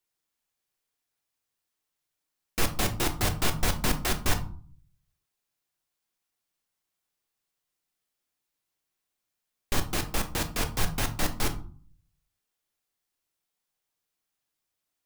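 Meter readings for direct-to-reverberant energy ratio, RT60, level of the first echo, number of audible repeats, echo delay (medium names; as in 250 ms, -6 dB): 6.0 dB, 0.45 s, no echo, no echo, no echo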